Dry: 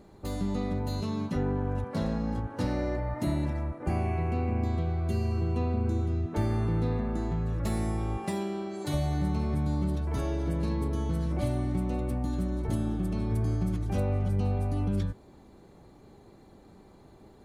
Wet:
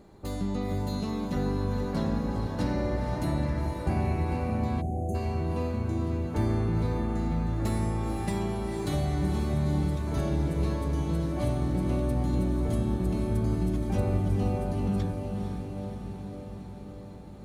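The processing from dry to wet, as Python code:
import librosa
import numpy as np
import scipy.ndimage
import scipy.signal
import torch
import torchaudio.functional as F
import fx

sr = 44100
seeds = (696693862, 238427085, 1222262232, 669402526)

y = fx.echo_diffused(x, sr, ms=481, feedback_pct=69, wet_db=-5.5)
y = fx.spec_box(y, sr, start_s=4.81, length_s=0.34, low_hz=860.0, high_hz=6100.0, gain_db=-28)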